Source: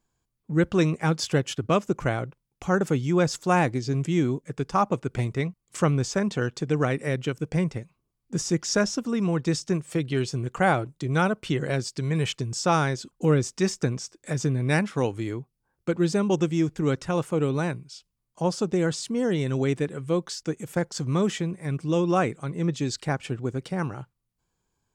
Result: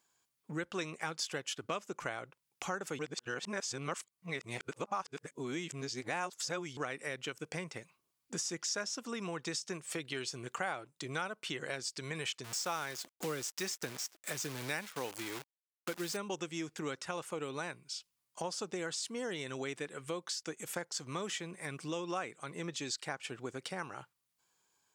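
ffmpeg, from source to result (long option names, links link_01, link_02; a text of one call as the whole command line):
ffmpeg -i in.wav -filter_complex "[0:a]asettb=1/sr,asplit=3[link_01][link_02][link_03];[link_01]atrim=end=12.444[link_04];[link_02]atrim=start=12.44:end=16.17,asetpts=PTS-STARTPTS,afade=type=in:duration=0.004:curve=qsin,afade=type=out:start_time=3.726:duration=0.004:curve=qsin,acrusher=bits=7:dc=4:mix=0:aa=0.000001[link_05];[link_03]atrim=start=16.166[link_06];[link_04][link_05]acrossfade=duration=0.004:curve1=hsin:curve2=qsin[link_07];[link_07][link_06]acrossfade=duration=0.004:curve1=qsin:curve2=hsin,asplit=3[link_08][link_09][link_10];[link_08]atrim=end=2.992[link_11];[link_09]atrim=start=2.988:end=6.772,asetpts=PTS-STARTPTS,areverse[link_12];[link_10]atrim=start=6.768[link_13];[link_11][link_12]acrossfade=duration=0.004:curve1=hsin:curve2=hsin[link_14];[link_14][link_13]acrossfade=duration=0.004:curve1=hsin:curve2=hsin,highpass=frequency=1300:poles=1,acompressor=threshold=-45dB:ratio=3,volume=6dB" out.wav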